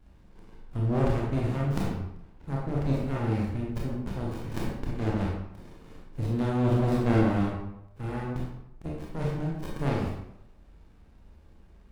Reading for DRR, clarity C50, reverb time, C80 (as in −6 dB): −4.0 dB, 1.0 dB, 0.80 s, 4.0 dB